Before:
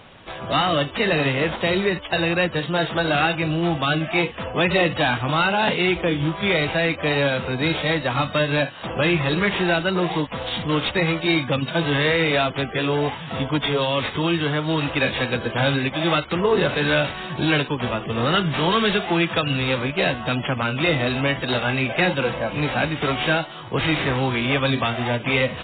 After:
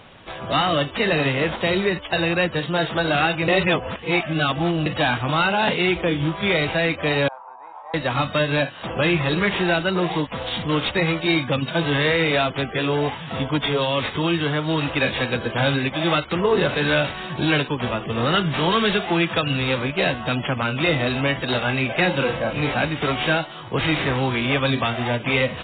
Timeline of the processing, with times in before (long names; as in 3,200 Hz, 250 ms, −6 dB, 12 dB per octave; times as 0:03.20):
0:03.48–0:04.86: reverse
0:07.28–0:07.94: flat-topped band-pass 920 Hz, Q 3.2
0:22.10–0:22.74: double-tracking delay 36 ms −5 dB